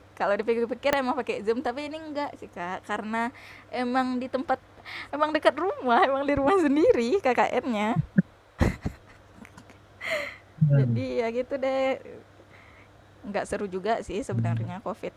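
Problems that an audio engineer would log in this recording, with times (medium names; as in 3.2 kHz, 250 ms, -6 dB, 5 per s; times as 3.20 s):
0.93 s: pop -7 dBFS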